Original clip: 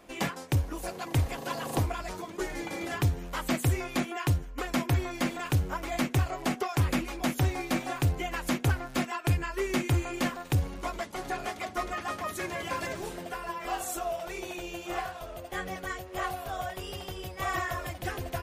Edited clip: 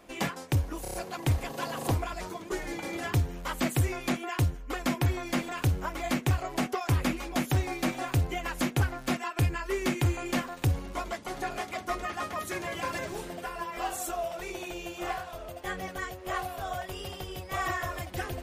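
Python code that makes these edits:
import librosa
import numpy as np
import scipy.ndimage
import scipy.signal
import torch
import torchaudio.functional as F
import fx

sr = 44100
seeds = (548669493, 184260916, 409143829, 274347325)

y = fx.edit(x, sr, fx.stutter(start_s=0.82, slice_s=0.03, count=5), tone=tone)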